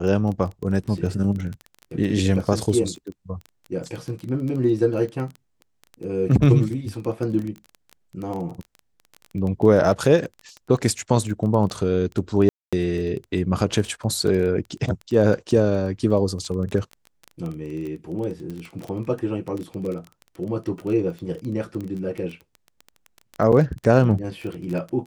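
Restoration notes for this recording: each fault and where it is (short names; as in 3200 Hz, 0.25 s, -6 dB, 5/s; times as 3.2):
crackle 14/s -27 dBFS
12.49–12.73 gap 0.236 s
23.52–23.53 gap 6.4 ms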